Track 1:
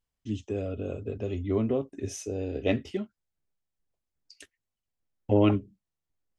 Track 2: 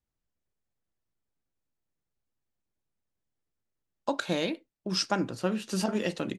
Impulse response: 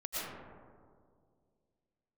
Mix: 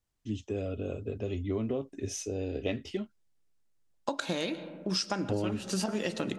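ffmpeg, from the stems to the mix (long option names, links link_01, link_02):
-filter_complex "[0:a]adynamicequalizer=threshold=0.00282:dfrequency=4300:dqfactor=0.83:tfrequency=4300:tqfactor=0.83:attack=5:release=100:ratio=0.375:range=2.5:mode=boostabove:tftype=bell,volume=-1.5dB[link_01];[1:a]lowpass=8800,highshelf=frequency=6500:gain=8.5,volume=1dB,asplit=2[link_02][link_03];[link_03]volume=-18.5dB[link_04];[2:a]atrim=start_sample=2205[link_05];[link_04][link_05]afir=irnorm=-1:irlink=0[link_06];[link_01][link_02][link_06]amix=inputs=3:normalize=0,acompressor=threshold=-27dB:ratio=12"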